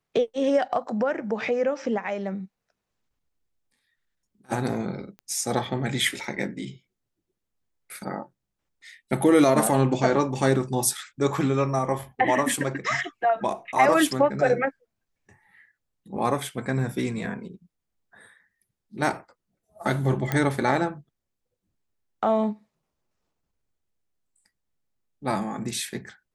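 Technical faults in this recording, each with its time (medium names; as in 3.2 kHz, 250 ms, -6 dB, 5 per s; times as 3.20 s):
5.19 s: pop -30 dBFS
20.32 s: pop -11 dBFS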